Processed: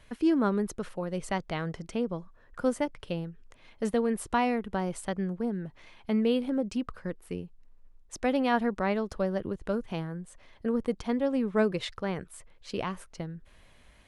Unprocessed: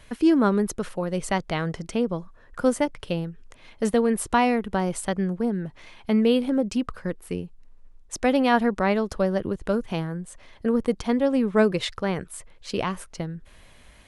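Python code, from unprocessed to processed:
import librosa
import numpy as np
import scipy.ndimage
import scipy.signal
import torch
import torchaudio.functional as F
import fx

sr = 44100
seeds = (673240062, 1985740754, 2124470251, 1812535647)

y = fx.high_shelf(x, sr, hz=5900.0, db=-4.5)
y = y * librosa.db_to_amplitude(-6.0)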